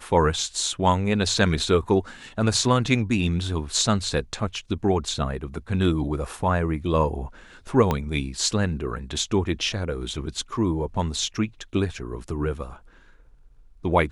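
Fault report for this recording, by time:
0:07.91: click −10 dBFS

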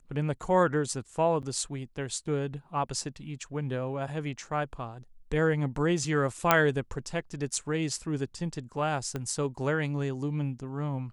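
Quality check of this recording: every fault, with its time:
0:01.42–0:01.43: drop-out 8.7 ms
0:06.51: click −5 dBFS
0:09.16: click −20 dBFS

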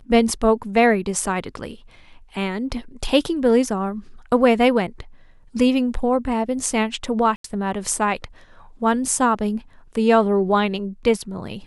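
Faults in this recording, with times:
0:07.36–0:07.44: drop-out 83 ms

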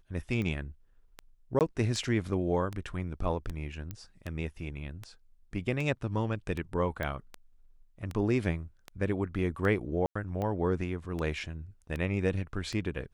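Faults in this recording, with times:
scratch tick 78 rpm −23 dBFS
0:01.59–0:01.61: drop-out 18 ms
0:03.91: click −24 dBFS
0:07.03: click −21 dBFS
0:10.06–0:10.15: drop-out 95 ms

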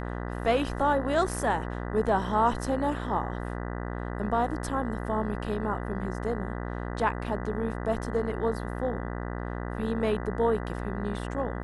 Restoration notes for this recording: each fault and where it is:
mains buzz 60 Hz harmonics 33 −34 dBFS

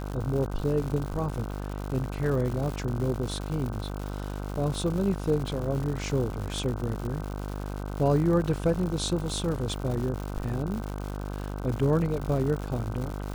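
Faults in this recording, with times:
mains buzz 50 Hz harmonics 31 −34 dBFS
surface crackle 200 per second −33 dBFS

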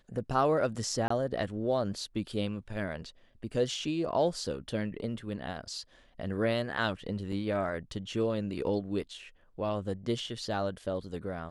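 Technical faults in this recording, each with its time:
0:01.08–0:01.10: drop-out 24 ms
0:07.32: drop-out 3.1 ms

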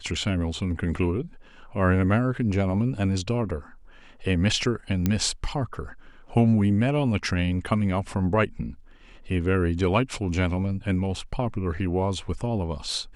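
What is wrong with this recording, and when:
0:05.06: click −10 dBFS

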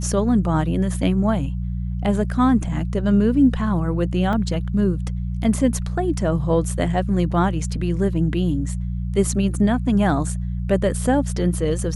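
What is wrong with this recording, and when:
mains hum 60 Hz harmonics 3 −25 dBFS
0:04.33: drop-out 2.2 ms

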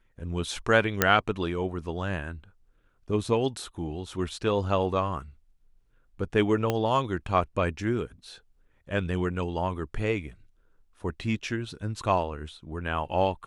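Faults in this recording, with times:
0:01.02: click −3 dBFS
0:06.70: click −12 dBFS

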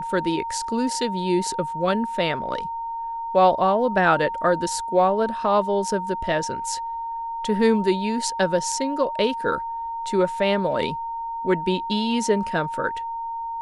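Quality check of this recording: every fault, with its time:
whistle 920 Hz −27 dBFS

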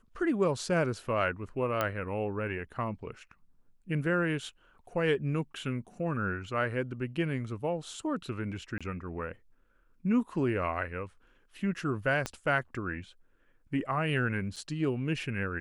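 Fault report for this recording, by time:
0:01.81: click −15 dBFS
0:08.78–0:08.81: drop-out 26 ms
0:12.26: click −18 dBFS
0:14.56–0:14.57: drop-out 5.6 ms

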